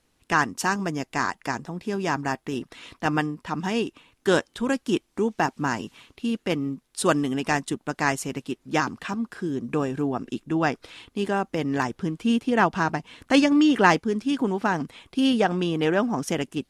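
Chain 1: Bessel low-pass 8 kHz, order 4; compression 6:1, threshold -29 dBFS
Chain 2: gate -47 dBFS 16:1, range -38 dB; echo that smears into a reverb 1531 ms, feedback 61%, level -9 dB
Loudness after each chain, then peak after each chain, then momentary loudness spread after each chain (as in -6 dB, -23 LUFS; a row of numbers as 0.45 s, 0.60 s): -34.0 LUFS, -24.5 LUFS; -16.5 dBFS, -2.5 dBFS; 5 LU, 9 LU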